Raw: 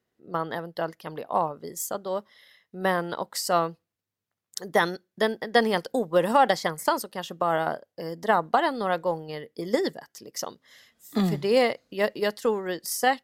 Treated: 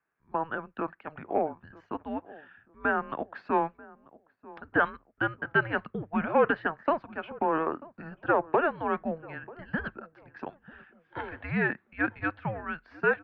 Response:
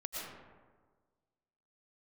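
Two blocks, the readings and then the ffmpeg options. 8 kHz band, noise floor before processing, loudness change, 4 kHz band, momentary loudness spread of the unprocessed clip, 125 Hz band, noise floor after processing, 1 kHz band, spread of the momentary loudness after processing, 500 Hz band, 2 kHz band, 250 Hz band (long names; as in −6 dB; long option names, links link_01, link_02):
below −40 dB, below −85 dBFS, −4.0 dB, −17.0 dB, 13 LU, −3.5 dB, −70 dBFS, −4.5 dB, 17 LU, −5.5 dB, +1.0 dB, −3.0 dB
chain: -filter_complex "[0:a]tiltshelf=frequency=770:gain=-9,bandreject=frequency=60:width_type=h:width=6,bandreject=frequency=120:width_type=h:width=6,bandreject=frequency=180:width_type=h:width=6,bandreject=frequency=240:width_type=h:width=6,bandreject=frequency=300:width_type=h:width=6,bandreject=frequency=360:width_type=h:width=6,bandreject=frequency=420:width_type=h:width=6,asoftclip=type=tanh:threshold=-10dB,asplit=2[link_01][link_02];[link_02]adelay=939,lowpass=frequency=950:poles=1,volume=-18.5dB,asplit=2[link_03][link_04];[link_04]adelay=939,lowpass=frequency=950:poles=1,volume=0.39,asplit=2[link_05][link_06];[link_06]adelay=939,lowpass=frequency=950:poles=1,volume=0.39[link_07];[link_01][link_03][link_05][link_07]amix=inputs=4:normalize=0,highpass=frequency=500:width_type=q:width=0.5412,highpass=frequency=500:width_type=q:width=1.307,lowpass=frequency=2400:width_type=q:width=0.5176,lowpass=frequency=2400:width_type=q:width=0.7071,lowpass=frequency=2400:width_type=q:width=1.932,afreqshift=-320,volume=-2dB"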